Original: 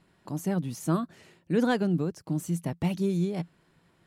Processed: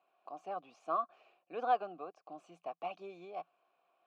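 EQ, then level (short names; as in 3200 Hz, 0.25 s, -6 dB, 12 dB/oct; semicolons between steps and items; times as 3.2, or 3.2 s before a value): vowel filter a; BPF 380–5700 Hz; dynamic EQ 1200 Hz, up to +7 dB, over -58 dBFS, Q 2.4; +4.0 dB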